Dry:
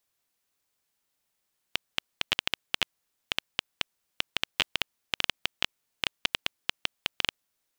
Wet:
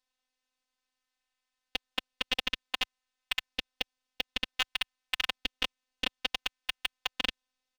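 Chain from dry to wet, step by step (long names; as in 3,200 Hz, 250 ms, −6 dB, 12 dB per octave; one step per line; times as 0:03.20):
low-pass filter 5,100 Hz 12 dB per octave
parametric band 240 Hz −14 dB 2.9 octaves
comb filter 2.8 ms, depth 51%
in parallel at −9.5 dB: sample-and-hold swept by an LFO 13×, swing 100% 0.56 Hz
on the sum: phases set to zero 257 Hz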